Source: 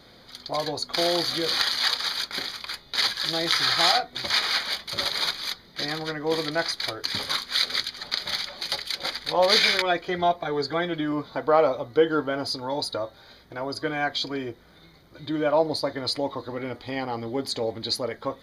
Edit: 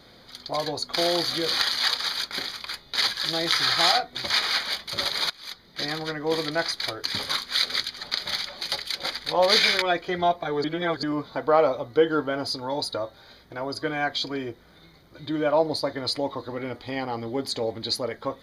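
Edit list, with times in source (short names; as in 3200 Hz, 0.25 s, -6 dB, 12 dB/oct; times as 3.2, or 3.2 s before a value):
5.3–5.82 fade in, from -18 dB
10.64–11.03 reverse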